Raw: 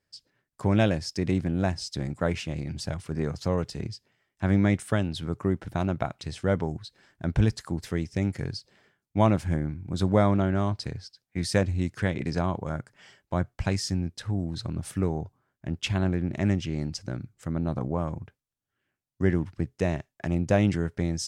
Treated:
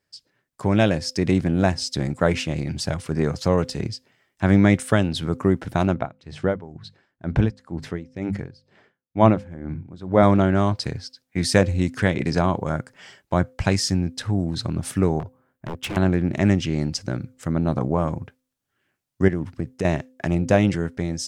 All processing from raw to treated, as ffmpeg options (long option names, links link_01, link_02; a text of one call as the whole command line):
ffmpeg -i in.wav -filter_complex "[0:a]asettb=1/sr,asplit=3[link_01][link_02][link_03];[link_01]atrim=end=5.944[link_04];[link_02]atrim=start=5.94:end=10.23,asetpts=PTS-STARTPTS,afade=type=in:duration=0.004:curve=qsin,afade=type=out:start_time=4.286:duration=0.004:curve=qsin,aemphasis=mode=reproduction:type=75fm,bandreject=frequency=50:width_type=h:width=6,bandreject=frequency=100:width_type=h:width=6,bandreject=frequency=150:width_type=h:width=6,bandreject=frequency=200:width_type=h:width=6,aeval=exprs='val(0)*pow(10,-18*(0.5-0.5*cos(2*PI*2.1*n/s))/20)':channel_layout=same[link_05];[link_03]atrim=start=10.226[link_06];[link_04][link_05]acrossfade=duration=0.004:curve1=hsin:curve2=qsin[link_07];[link_07][link_06]acrossfade=duration=0.004:curve1=qsin:curve2=hsin,asettb=1/sr,asplit=3[link_08][link_09][link_10];[link_08]atrim=end=15.194[link_11];[link_09]atrim=start=15.19:end=15.97,asetpts=PTS-STARTPTS,afade=type=in:duration=0.004:curve=qsin,afade=type=out:start_time=0.776:duration=0.004:curve=qsin,equalizer=frequency=5100:width=0.59:gain=-9,aeval=exprs='0.0316*(abs(mod(val(0)/0.0316+3,4)-2)-1)':channel_layout=same[link_12];[link_10]atrim=start=15.966[link_13];[link_11][link_12]acrossfade=duration=0.004:curve1=hsin:curve2=qsin[link_14];[link_14][link_13]acrossfade=duration=0.004:curve1=qsin:curve2=hsin,asettb=1/sr,asplit=3[link_15][link_16][link_17];[link_15]atrim=end=19.284[link_18];[link_16]atrim=start=19.28:end=19.85,asetpts=PTS-STARTPTS,afade=type=in:duration=0.004:curve=qsin,afade=type=out:start_time=0.566:duration=0.004:curve=qsin,equalizer=frequency=3400:width=0.35:gain=-3.5,acompressor=threshold=-27dB:ratio=4:attack=3.2:release=140:knee=1:detection=peak[link_19];[link_17]atrim=start=19.846[link_20];[link_18][link_19]acrossfade=duration=0.004:curve1=hsin:curve2=qsin[link_21];[link_21][link_20]acrossfade=duration=0.004:curve1=qsin:curve2=hsin,dynaudnorm=framelen=220:gausssize=9:maxgain=4.5dB,lowshelf=frequency=88:gain=-7,bandreject=frequency=257.3:width_type=h:width=4,bandreject=frequency=514.6:width_type=h:width=4,volume=3.5dB" out.wav